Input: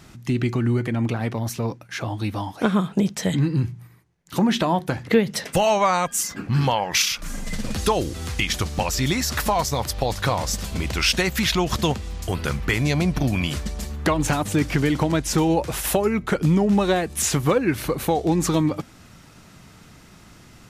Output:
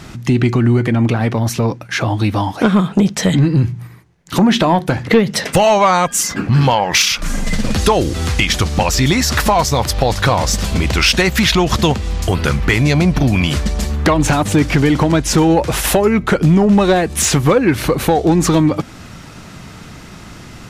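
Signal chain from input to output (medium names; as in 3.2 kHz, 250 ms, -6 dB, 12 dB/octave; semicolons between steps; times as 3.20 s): treble shelf 9.4 kHz -8.5 dB; in parallel at +1 dB: compression, threshold -27 dBFS, peak gain reduction 14.5 dB; on the sum: saturation -9 dBFS, distortion -20 dB; trim +6.5 dB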